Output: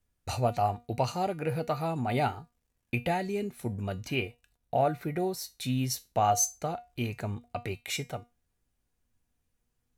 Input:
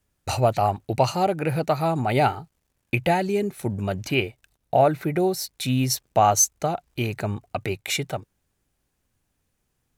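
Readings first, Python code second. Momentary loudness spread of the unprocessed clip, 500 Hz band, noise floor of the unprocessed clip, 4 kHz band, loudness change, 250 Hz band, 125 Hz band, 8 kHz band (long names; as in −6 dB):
10 LU, −8.5 dB, −75 dBFS, −8.0 dB, −7.5 dB, −7.5 dB, −7.0 dB, −8.0 dB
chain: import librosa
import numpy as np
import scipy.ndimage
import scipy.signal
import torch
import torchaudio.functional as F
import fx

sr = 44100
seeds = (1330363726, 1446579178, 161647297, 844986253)

y = fx.low_shelf(x, sr, hz=81.0, db=8.5)
y = fx.comb_fb(y, sr, f0_hz=240.0, decay_s=0.25, harmonics='all', damping=0.0, mix_pct=70)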